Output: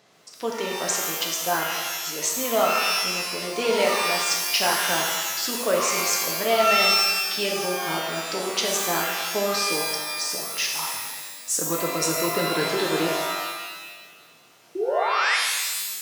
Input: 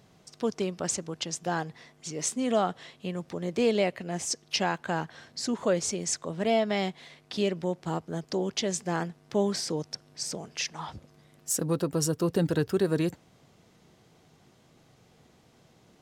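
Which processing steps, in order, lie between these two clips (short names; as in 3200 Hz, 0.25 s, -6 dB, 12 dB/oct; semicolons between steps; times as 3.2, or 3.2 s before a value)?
weighting filter A; painted sound rise, 14.75–15.37, 350–2300 Hz -30 dBFS; shimmer reverb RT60 1.3 s, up +12 st, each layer -2 dB, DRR -0.5 dB; gain +3.5 dB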